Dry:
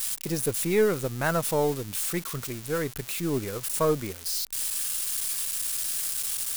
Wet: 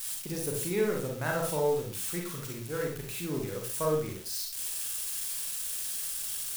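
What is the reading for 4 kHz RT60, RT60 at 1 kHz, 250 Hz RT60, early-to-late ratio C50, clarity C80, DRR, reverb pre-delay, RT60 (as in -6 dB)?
0.35 s, 0.45 s, 0.45 s, 3.5 dB, 9.0 dB, -0.5 dB, 34 ms, 0.40 s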